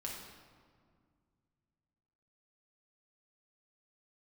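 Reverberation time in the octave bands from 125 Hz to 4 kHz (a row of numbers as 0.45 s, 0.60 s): 3.2 s, 2.8 s, 2.1 s, 1.9 s, 1.5 s, 1.1 s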